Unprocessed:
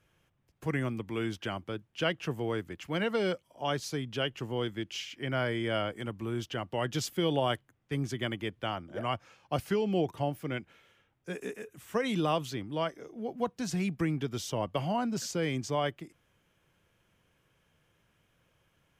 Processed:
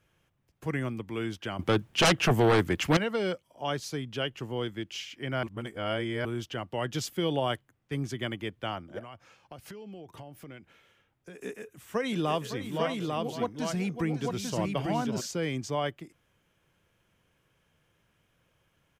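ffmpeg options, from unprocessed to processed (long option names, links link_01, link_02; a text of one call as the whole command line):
ffmpeg -i in.wav -filter_complex "[0:a]asettb=1/sr,asplit=3[link_01][link_02][link_03];[link_01]atrim=end=1.594[link_04];[link_02]atrim=start=1.59:end=2.97,asetpts=PTS-STARTPTS,afade=type=in:duration=0.004:curve=qsin,afade=type=out:start_time=1.376:duration=0.004:curve=qsin,aeval=exprs='0.141*sin(PI/2*3.55*val(0)/0.141)':channel_layout=same[link_05];[link_03]atrim=start=2.966[link_06];[link_04][link_05]acrossfade=duration=0.004:curve1=hsin:curve2=qsin[link_07];[link_07][link_06]acrossfade=duration=0.004:curve1=qsin:curve2=hsin,asplit=3[link_08][link_09][link_10];[link_08]afade=type=out:start_time=8.98:duration=0.02[link_11];[link_09]acompressor=threshold=-41dB:ratio=10:attack=3.2:release=140:knee=1:detection=peak,afade=type=in:start_time=8.98:duration=0.02,afade=type=out:start_time=11.4:duration=0.02[link_12];[link_10]afade=type=in:start_time=11.4:duration=0.02[link_13];[link_11][link_12][link_13]amix=inputs=3:normalize=0,asplit=3[link_14][link_15][link_16];[link_14]afade=type=out:start_time=12.09:duration=0.02[link_17];[link_15]aecho=1:1:558|846:0.316|0.668,afade=type=in:start_time=12.09:duration=0.02,afade=type=out:start_time=15.2:duration=0.02[link_18];[link_16]afade=type=in:start_time=15.2:duration=0.02[link_19];[link_17][link_18][link_19]amix=inputs=3:normalize=0,asplit=3[link_20][link_21][link_22];[link_20]atrim=end=5.432[link_23];[link_21]atrim=start=5.428:end=6.252,asetpts=PTS-STARTPTS,areverse[link_24];[link_22]atrim=start=6.248[link_25];[link_23][link_24]acrossfade=duration=0.004:curve1=hsin:curve2=hsin[link_26];[link_26][link_25]acrossfade=duration=0.004:curve1=hsin:curve2=hsin" out.wav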